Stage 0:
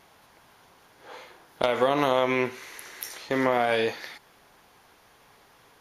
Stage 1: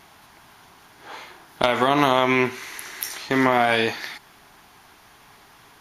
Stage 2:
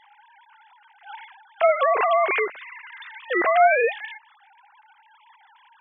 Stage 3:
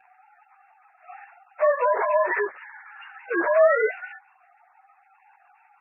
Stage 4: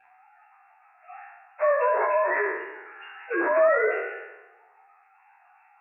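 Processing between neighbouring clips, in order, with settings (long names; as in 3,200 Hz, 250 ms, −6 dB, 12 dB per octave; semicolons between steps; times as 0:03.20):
parametric band 510 Hz −11.5 dB 0.36 octaves; level +7 dB
three sine waves on the formant tracks
partials spread apart or drawn together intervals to 91%
peak hold with a decay on every bin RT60 1.06 s; level −3.5 dB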